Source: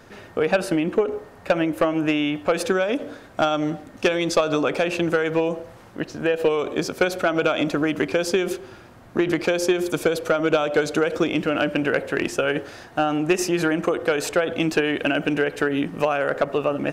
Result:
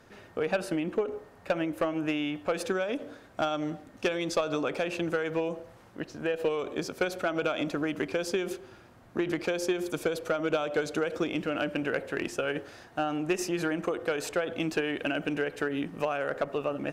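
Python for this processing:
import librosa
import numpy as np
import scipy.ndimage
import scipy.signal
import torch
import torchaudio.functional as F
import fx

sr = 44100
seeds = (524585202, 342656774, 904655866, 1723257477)

y = fx.cheby_harmonics(x, sr, harmonics=(8,), levels_db=(-41,), full_scale_db=-9.5)
y = F.gain(torch.from_numpy(y), -8.5).numpy()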